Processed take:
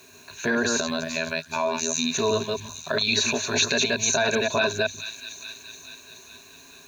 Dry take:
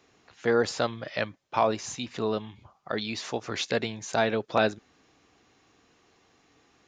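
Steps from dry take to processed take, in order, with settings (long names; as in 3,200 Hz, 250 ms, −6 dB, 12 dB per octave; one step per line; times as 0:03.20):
delay that plays each chunk backwards 128 ms, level −3 dB
0:00.80–0:02.12: phases set to zero 81.4 Hz
EQ curve with evenly spaced ripples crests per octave 1.5, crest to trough 16 dB
bit reduction 11 bits
on a send: delay with a high-pass on its return 425 ms, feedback 58%, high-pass 3,300 Hz, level −13.5 dB
on the sum: brickwall limiter −16.5 dBFS, peak gain reduction 10.5 dB
in parallel at −2 dB: downward compressor, threshold −36 dBFS, peak gain reduction 14 dB
on the sum: high-shelf EQ 2,500 Hz +8.5 dB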